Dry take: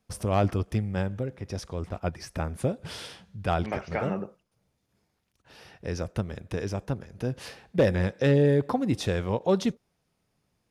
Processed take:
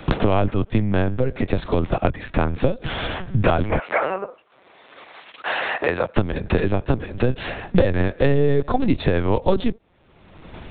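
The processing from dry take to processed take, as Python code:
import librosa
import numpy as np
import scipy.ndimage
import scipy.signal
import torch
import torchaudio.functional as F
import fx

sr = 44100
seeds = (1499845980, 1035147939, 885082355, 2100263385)

y = fx.lpc_vocoder(x, sr, seeds[0], excitation='pitch_kept', order=10)
y = fx.highpass(y, sr, hz=670.0, slope=12, at=(3.79, 6.17))
y = fx.band_squash(y, sr, depth_pct=100)
y = F.gain(torch.from_numpy(y), 8.5).numpy()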